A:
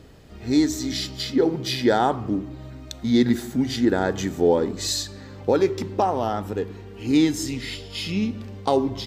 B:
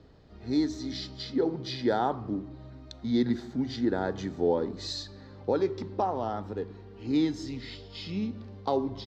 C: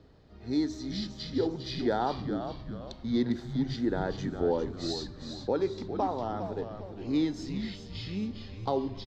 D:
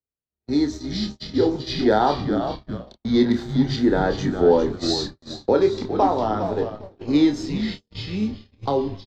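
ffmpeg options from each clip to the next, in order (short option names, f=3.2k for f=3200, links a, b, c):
-filter_complex "[0:a]firequalizer=gain_entry='entry(970,0);entry(2700,-11);entry(4100,-6);entry(9500,-26)':delay=0.05:min_phase=1,acrossover=split=150|5900[a][b][c];[b]crystalizer=i=3:c=0[d];[a][d][c]amix=inputs=3:normalize=0,volume=-7.5dB"
-filter_complex "[0:a]asplit=6[a][b][c][d][e][f];[b]adelay=404,afreqshift=-100,volume=-8dB[g];[c]adelay=808,afreqshift=-200,volume=-15.3dB[h];[d]adelay=1212,afreqshift=-300,volume=-22.7dB[i];[e]adelay=1616,afreqshift=-400,volume=-30dB[j];[f]adelay=2020,afreqshift=-500,volume=-37.3dB[k];[a][g][h][i][j][k]amix=inputs=6:normalize=0,volume=-2dB"
-filter_complex "[0:a]agate=range=-50dB:threshold=-38dB:ratio=16:detection=peak,acrossover=split=220[a][b];[b]dynaudnorm=f=300:g=11:m=3dB[c];[a][c]amix=inputs=2:normalize=0,asplit=2[d][e];[e]adelay=28,volume=-7dB[f];[d][f]amix=inputs=2:normalize=0,volume=7.5dB"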